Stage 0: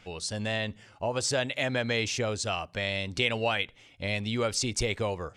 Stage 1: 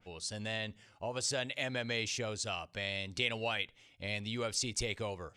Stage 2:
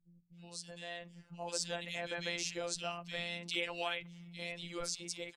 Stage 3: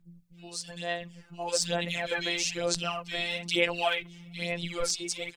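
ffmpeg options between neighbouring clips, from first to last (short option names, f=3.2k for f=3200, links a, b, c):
-af "adynamicequalizer=threshold=0.00708:dfrequency=2100:dqfactor=0.7:tfrequency=2100:tqfactor=0.7:attack=5:release=100:ratio=0.375:range=2:mode=boostabove:tftype=highshelf,volume=-8.5dB"
-filter_complex "[0:a]dynaudnorm=f=200:g=13:m=5.5dB,acrossover=split=200|2500[a][b][c];[c]adelay=320[d];[b]adelay=370[e];[a][e][d]amix=inputs=3:normalize=0,afftfilt=real='hypot(re,im)*cos(PI*b)':imag='0':win_size=1024:overlap=0.75,volume=-2.5dB"
-af "aphaser=in_gain=1:out_gain=1:delay=2.8:decay=0.58:speed=1.1:type=sinusoidal,volume=7dB"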